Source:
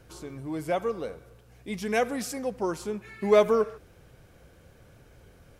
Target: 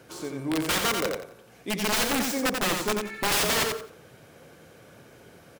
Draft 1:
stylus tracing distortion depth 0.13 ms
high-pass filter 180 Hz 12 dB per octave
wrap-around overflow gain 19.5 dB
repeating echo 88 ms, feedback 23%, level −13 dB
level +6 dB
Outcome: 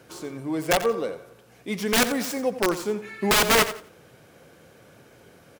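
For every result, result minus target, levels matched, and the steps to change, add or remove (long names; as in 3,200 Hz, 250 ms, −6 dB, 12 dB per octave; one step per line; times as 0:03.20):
wrap-around overflow: distortion −9 dB; echo-to-direct −8 dB
change: wrap-around overflow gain 26 dB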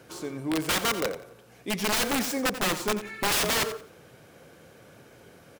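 echo-to-direct −8 dB
change: repeating echo 88 ms, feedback 23%, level −5 dB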